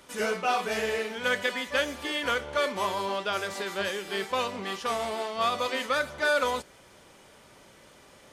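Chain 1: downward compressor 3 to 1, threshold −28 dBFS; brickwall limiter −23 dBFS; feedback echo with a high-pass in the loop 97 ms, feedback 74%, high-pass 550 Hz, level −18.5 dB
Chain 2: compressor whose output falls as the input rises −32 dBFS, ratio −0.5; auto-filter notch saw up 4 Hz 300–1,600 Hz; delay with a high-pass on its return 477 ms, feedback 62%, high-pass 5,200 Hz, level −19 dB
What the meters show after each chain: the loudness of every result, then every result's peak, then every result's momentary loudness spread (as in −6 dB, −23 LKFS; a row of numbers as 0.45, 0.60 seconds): −33.5, −34.0 LKFS; −22.5, −18.5 dBFS; 21, 19 LU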